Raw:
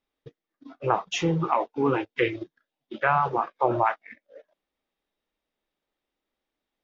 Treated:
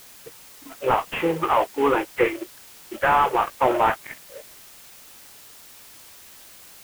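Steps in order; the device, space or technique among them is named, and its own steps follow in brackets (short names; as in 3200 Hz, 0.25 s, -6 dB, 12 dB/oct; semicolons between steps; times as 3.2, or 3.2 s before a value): army field radio (BPF 400–2800 Hz; CVSD 16 kbps; white noise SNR 21 dB); gain +7.5 dB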